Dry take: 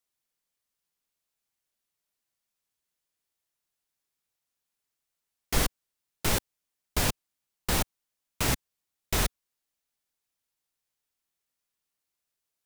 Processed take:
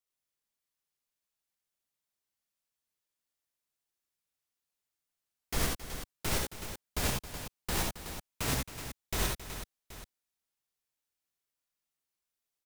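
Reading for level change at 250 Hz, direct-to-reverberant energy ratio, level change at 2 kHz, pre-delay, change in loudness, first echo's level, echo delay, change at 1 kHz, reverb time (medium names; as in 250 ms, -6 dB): -4.0 dB, no reverb, -4.0 dB, no reverb, -5.5 dB, -3.0 dB, 69 ms, -4.0 dB, no reverb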